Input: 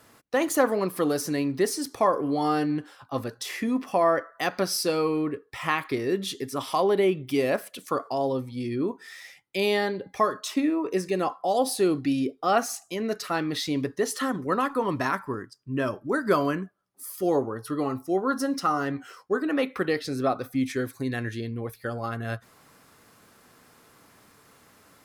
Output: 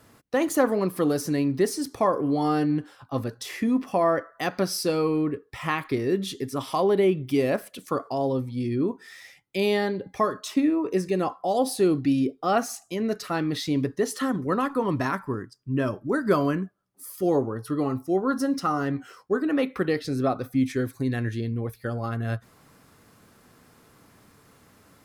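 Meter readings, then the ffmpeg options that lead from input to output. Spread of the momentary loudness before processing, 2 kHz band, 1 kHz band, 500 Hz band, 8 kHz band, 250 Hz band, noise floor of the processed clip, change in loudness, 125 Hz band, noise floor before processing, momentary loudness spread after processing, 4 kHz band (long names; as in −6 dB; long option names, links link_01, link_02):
9 LU, −1.5 dB, −1.0 dB, +0.5 dB, −2.0 dB, +2.5 dB, −58 dBFS, +1.0 dB, +5.0 dB, −58 dBFS, 8 LU, −2.0 dB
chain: -af "lowshelf=frequency=310:gain=8.5,volume=-2dB"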